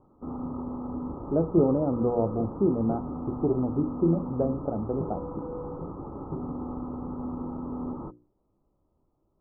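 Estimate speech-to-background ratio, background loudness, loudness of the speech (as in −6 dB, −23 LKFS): 8.5 dB, −36.0 LKFS, −27.5 LKFS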